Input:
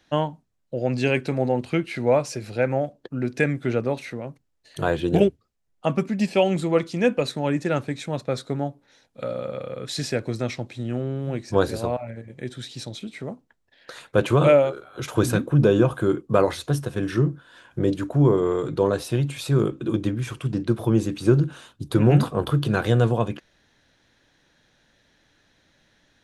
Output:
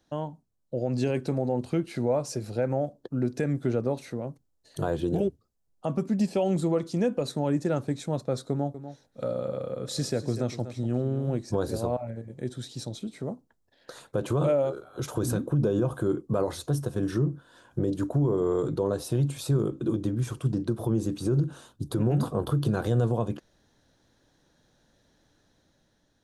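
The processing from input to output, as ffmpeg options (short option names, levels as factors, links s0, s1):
-filter_complex "[0:a]asettb=1/sr,asplit=3[s0][s1][s2];[s0]atrim=end=8.504[s3];[s1]atrim=start=8.5:end=11.3,asetpts=PTS-STARTPTS,afade=t=in:d=0.004:c=qsin,afade=t=out:st=2.796:d=0.004:c=qsin,aecho=1:1:243:0.211,atrim=end_sample=123480[s4];[s2]atrim=start=11.296[s5];[s3][s4]acrossfade=d=0.004:c1=hsin:c2=qsin[s6];[s6][s5]acrossfade=d=0.004:c1=qsin:c2=hsin,equalizer=f=2300:w=0.97:g=-12.5,alimiter=limit=0.15:level=0:latency=1:release=123,dynaudnorm=f=210:g=7:m=1.58,volume=0.631"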